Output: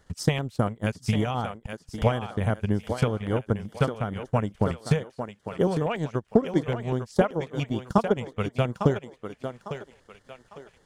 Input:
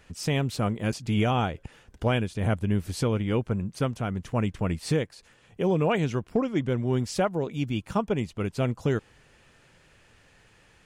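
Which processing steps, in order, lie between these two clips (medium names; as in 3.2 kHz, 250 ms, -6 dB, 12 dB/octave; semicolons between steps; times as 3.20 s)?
transient shaper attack +11 dB, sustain -11 dB; thinning echo 852 ms, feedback 36%, high-pass 300 Hz, level -7 dB; LFO notch square 5.2 Hz 310–2500 Hz; trim -3.5 dB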